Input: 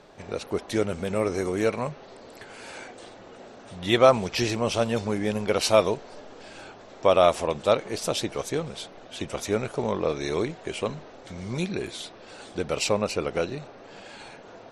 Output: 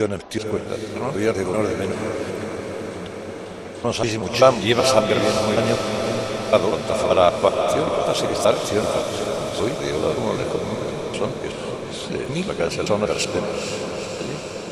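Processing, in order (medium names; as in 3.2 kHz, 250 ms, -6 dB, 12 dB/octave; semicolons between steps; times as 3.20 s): slices played last to first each 192 ms, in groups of 5; echo that smears into a reverb 472 ms, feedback 71%, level -5 dB; trim +3.5 dB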